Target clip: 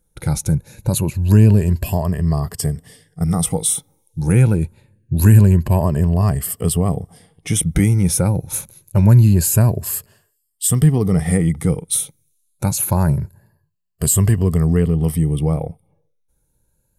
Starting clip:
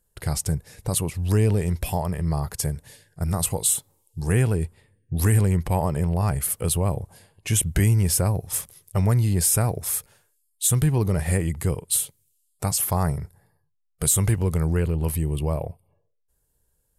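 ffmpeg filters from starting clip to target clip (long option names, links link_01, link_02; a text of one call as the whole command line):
ffmpeg -i in.wav -af "afftfilt=real='re*pow(10,10/40*sin(2*PI*(1.4*log(max(b,1)*sr/1024/100)/log(2)-(0.25)*(pts-256)/sr)))':imag='im*pow(10,10/40*sin(2*PI*(1.4*log(max(b,1)*sr/1024/100)/log(2)-(0.25)*(pts-256)/sr)))':win_size=1024:overlap=0.75,equalizer=frequency=190:width=0.73:gain=8,volume=1dB" out.wav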